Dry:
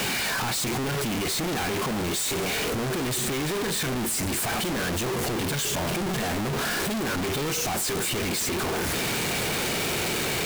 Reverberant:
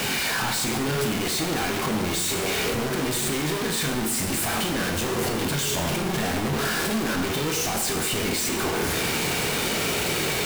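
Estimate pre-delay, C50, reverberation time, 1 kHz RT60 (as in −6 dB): 6 ms, 6.0 dB, 0.95 s, 0.90 s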